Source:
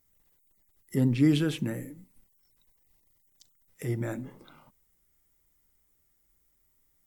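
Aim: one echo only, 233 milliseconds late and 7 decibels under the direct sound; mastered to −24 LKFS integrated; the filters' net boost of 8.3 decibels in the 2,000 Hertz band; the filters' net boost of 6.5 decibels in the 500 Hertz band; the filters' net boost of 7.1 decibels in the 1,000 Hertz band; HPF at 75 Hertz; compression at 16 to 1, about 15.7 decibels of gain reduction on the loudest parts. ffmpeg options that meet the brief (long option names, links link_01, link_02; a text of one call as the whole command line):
ffmpeg -i in.wav -af "highpass=75,equalizer=frequency=500:width_type=o:gain=7.5,equalizer=frequency=1000:width_type=o:gain=4.5,equalizer=frequency=2000:width_type=o:gain=8.5,acompressor=threshold=-30dB:ratio=16,aecho=1:1:233:0.447,volume=12.5dB" out.wav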